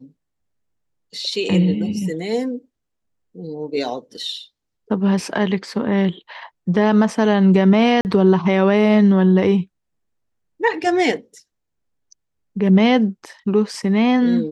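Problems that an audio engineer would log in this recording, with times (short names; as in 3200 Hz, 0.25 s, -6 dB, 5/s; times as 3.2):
8.01–8.05 gap 39 ms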